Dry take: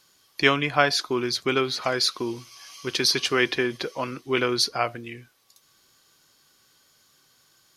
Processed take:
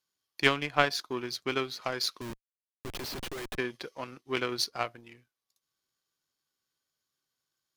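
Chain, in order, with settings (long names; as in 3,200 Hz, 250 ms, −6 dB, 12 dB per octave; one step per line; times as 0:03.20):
0:02.21–0:03.58: comparator with hysteresis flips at −27.5 dBFS
power curve on the samples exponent 1.4
level −2 dB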